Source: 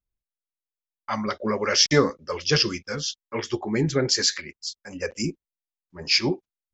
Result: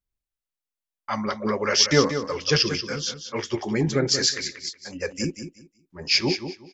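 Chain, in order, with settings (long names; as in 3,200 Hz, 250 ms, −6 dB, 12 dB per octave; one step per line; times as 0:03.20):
repeating echo 184 ms, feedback 21%, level −9.5 dB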